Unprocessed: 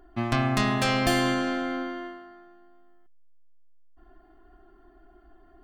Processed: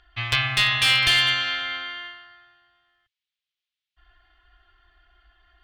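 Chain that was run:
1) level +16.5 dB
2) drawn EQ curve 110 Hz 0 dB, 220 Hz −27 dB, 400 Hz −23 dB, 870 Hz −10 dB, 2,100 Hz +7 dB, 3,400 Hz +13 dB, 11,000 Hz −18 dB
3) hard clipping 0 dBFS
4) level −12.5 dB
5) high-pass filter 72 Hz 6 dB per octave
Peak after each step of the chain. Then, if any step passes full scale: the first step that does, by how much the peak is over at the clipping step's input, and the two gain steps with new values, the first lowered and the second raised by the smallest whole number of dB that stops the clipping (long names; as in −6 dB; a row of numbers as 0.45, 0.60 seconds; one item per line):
+6.0, +9.0, 0.0, −12.5, −10.0 dBFS
step 1, 9.0 dB
step 1 +7.5 dB, step 4 −3.5 dB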